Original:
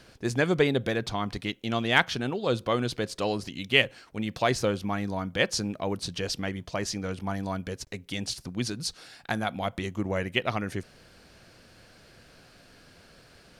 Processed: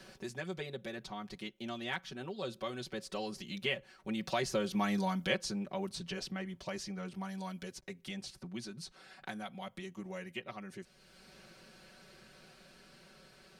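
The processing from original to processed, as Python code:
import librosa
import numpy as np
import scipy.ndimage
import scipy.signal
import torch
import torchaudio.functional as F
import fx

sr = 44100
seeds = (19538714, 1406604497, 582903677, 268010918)

y = fx.doppler_pass(x, sr, speed_mps=7, closest_m=1.7, pass_at_s=4.95)
y = y + 0.96 * np.pad(y, (int(5.3 * sr / 1000.0), 0))[:len(y)]
y = fx.band_squash(y, sr, depth_pct=70)
y = y * 10.0 ** (2.5 / 20.0)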